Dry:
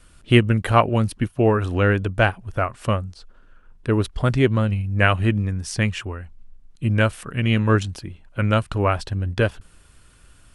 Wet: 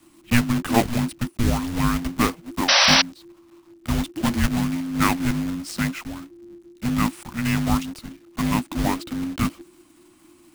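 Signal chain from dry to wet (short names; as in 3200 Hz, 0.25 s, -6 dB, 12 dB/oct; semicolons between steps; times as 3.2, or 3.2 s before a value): block floating point 3-bit; frequency shift -360 Hz; painted sound noise, 2.68–3.02, 500–6000 Hz -12 dBFS; gain -3.5 dB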